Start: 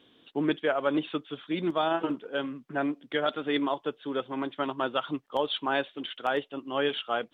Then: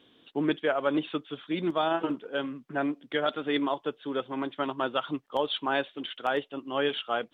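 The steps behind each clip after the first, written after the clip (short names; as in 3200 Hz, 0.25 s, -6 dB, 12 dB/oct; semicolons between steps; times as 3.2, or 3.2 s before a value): nothing audible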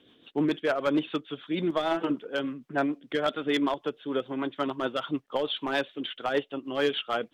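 overloaded stage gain 20 dB; rotary speaker horn 6.7 Hz; gain +3.5 dB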